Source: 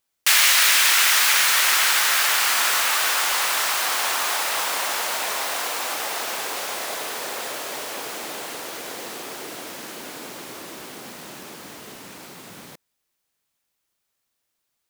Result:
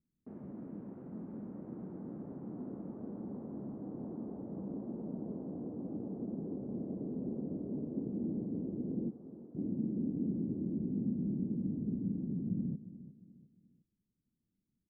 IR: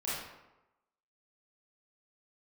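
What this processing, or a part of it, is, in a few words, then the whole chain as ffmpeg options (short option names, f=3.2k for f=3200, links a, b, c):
the neighbour's flat through the wall: -filter_complex "[0:a]asplit=3[a][b][c];[a]afade=t=out:st=9.09:d=0.02[d];[b]highpass=860,afade=t=in:st=9.09:d=0.02,afade=t=out:st=9.54:d=0.02[e];[c]afade=t=in:st=9.54:d=0.02[f];[d][e][f]amix=inputs=3:normalize=0,lowpass=f=270:w=0.5412,lowpass=f=270:w=1.3066,equalizer=f=200:t=o:w=0.82:g=7.5,aecho=1:1:354|708|1062:0.188|0.0678|0.0244,volume=8dB"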